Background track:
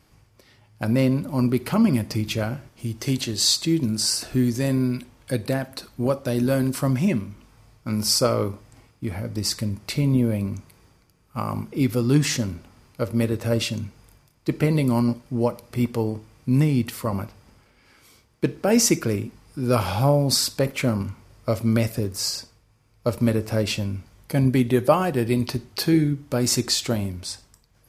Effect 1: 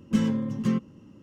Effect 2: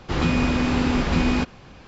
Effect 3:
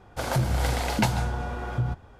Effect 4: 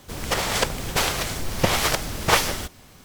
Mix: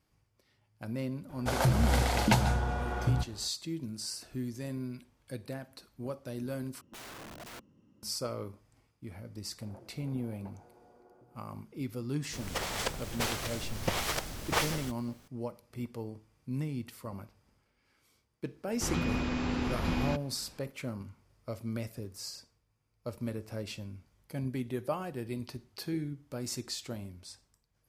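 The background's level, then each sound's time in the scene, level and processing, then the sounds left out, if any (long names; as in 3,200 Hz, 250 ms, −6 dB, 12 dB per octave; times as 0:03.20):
background track −16 dB
0:01.29: mix in 3 −1.5 dB
0:06.81: overwrite with 1 −14 dB + wrap-around overflow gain 28 dB
0:09.43: mix in 3 −12 dB + four-pole ladder band-pass 440 Hz, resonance 35%
0:12.24: mix in 4 −11 dB
0:18.72: mix in 2 −11 dB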